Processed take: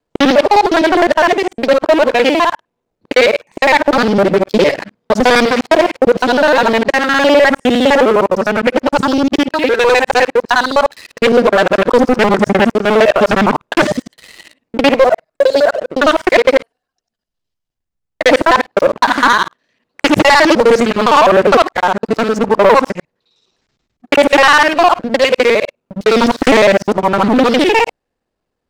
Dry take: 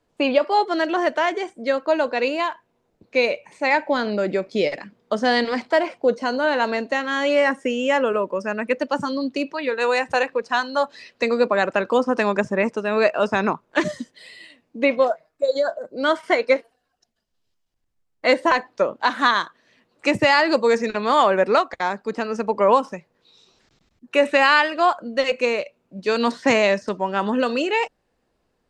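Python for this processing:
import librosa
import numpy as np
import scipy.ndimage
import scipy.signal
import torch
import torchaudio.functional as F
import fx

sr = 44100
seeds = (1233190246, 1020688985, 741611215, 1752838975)

y = fx.local_reverse(x, sr, ms=51.0)
y = fx.leveller(y, sr, passes=3)
y = fx.doppler_dist(y, sr, depth_ms=0.5)
y = F.gain(torch.from_numpy(y), 1.5).numpy()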